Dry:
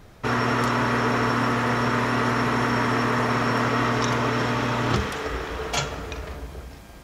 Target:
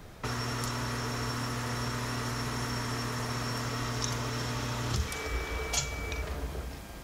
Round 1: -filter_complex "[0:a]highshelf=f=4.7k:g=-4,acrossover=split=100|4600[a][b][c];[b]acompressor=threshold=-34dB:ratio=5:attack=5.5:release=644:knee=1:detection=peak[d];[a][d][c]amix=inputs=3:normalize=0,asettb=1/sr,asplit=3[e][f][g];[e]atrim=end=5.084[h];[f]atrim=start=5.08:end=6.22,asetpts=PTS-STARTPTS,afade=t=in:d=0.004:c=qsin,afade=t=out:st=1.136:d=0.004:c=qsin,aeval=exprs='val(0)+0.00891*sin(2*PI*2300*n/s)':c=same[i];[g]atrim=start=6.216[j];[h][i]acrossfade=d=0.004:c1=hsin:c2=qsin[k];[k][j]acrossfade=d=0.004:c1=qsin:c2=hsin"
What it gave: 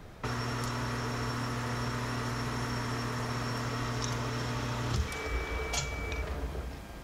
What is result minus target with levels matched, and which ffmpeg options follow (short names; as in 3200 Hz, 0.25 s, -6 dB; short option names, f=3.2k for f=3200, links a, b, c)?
8000 Hz band -4.0 dB
-filter_complex "[0:a]highshelf=f=4.7k:g=3,acrossover=split=100|4600[a][b][c];[b]acompressor=threshold=-34dB:ratio=5:attack=5.5:release=644:knee=1:detection=peak[d];[a][d][c]amix=inputs=3:normalize=0,asettb=1/sr,asplit=3[e][f][g];[e]atrim=end=5.084[h];[f]atrim=start=5.08:end=6.22,asetpts=PTS-STARTPTS,afade=t=in:d=0.004:c=qsin,afade=t=out:st=1.136:d=0.004:c=qsin,aeval=exprs='val(0)+0.00891*sin(2*PI*2300*n/s)':c=same[i];[g]atrim=start=6.216[j];[h][i]acrossfade=d=0.004:c1=hsin:c2=qsin[k];[k][j]acrossfade=d=0.004:c1=qsin:c2=hsin"